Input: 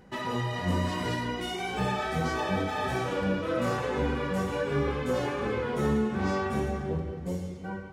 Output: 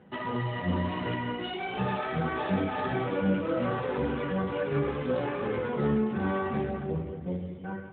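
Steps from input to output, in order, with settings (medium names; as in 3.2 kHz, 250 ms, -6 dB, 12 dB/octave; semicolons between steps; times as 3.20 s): 2.48–3.55 s: dynamic bell 240 Hz, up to +4 dB, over -44 dBFS, Q 1.4; AMR-NB 12.2 kbps 8 kHz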